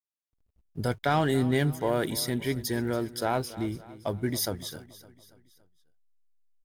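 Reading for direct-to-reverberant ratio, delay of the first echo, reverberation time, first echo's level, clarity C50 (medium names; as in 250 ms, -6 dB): no reverb, 282 ms, no reverb, -17.0 dB, no reverb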